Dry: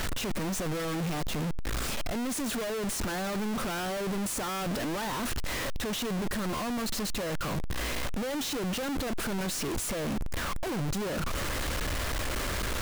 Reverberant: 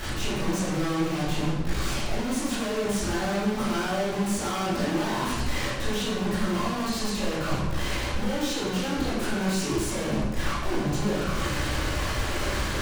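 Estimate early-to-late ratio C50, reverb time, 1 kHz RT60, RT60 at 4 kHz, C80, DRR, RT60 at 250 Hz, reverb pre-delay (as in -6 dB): -1.5 dB, 1.1 s, 1.0 s, 0.80 s, 2.5 dB, -9.5 dB, 1.2 s, 15 ms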